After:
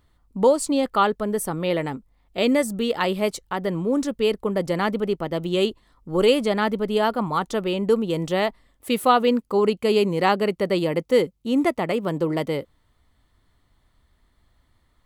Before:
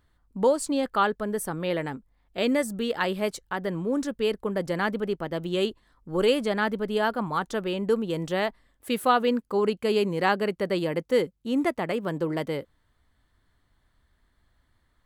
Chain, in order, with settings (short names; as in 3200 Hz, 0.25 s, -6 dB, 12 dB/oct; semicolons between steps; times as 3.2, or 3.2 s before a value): bell 1600 Hz -9 dB 0.22 oct; gain +4.5 dB